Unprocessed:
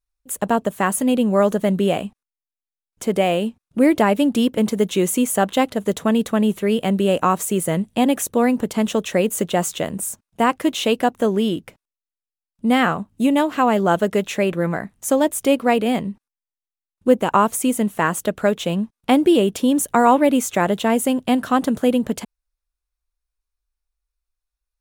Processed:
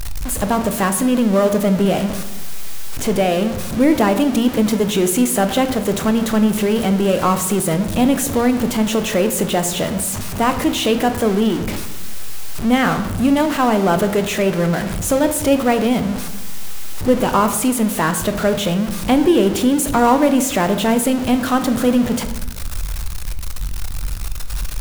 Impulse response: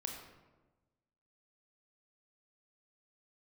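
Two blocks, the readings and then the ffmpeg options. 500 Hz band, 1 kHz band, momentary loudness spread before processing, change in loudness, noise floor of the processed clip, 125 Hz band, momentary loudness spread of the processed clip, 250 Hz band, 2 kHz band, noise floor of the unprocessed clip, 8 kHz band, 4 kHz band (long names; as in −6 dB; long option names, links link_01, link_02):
+1.5 dB, +1.0 dB, 8 LU, +2.0 dB, −24 dBFS, +5.0 dB, 13 LU, +3.0 dB, +2.0 dB, below −85 dBFS, +4.5 dB, +4.0 dB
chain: -filter_complex "[0:a]aeval=exprs='val(0)+0.5*0.106*sgn(val(0))':channel_layout=same,asplit=2[link_01][link_02];[1:a]atrim=start_sample=2205,asetrate=52920,aresample=44100,lowshelf=frequency=150:gain=9.5[link_03];[link_02][link_03]afir=irnorm=-1:irlink=0,volume=2dB[link_04];[link_01][link_04]amix=inputs=2:normalize=0,volume=-6.5dB"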